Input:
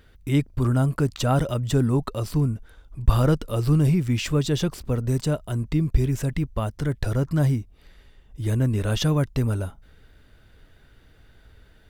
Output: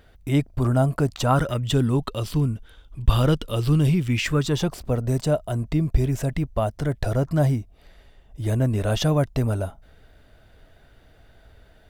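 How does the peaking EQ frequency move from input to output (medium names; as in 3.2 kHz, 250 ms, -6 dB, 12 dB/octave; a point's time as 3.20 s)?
peaking EQ +10 dB 0.54 oct
1.17 s 690 Hz
1.71 s 3.2 kHz
4.04 s 3.2 kHz
4.71 s 670 Hz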